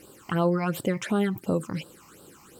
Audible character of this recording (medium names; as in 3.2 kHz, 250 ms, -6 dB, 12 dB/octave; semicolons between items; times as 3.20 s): phasing stages 8, 2.8 Hz, lowest notch 460–2100 Hz; a quantiser's noise floor 12-bit, dither triangular